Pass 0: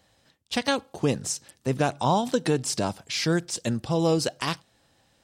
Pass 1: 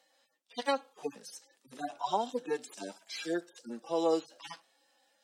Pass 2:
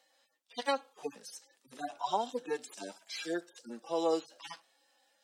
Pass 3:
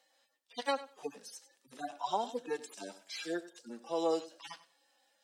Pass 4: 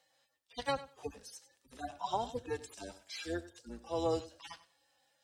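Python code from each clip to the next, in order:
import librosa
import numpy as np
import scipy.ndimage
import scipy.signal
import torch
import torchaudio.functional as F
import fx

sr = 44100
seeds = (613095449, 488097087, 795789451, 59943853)

y1 = fx.hpss_only(x, sr, part='harmonic')
y1 = scipy.signal.sosfilt(scipy.signal.bessel(6, 440.0, 'highpass', norm='mag', fs=sr, output='sos'), y1)
y1 = F.gain(torch.from_numpy(y1), -1.5).numpy()
y2 = fx.low_shelf(y1, sr, hz=380.0, db=-4.5)
y3 = fx.echo_feedback(y2, sr, ms=97, feedback_pct=16, wet_db=-16.0)
y3 = F.gain(torch.from_numpy(y3), -1.5).numpy()
y4 = fx.octave_divider(y3, sr, octaves=2, level_db=-4.0)
y4 = F.gain(torch.from_numpy(y4), -1.5).numpy()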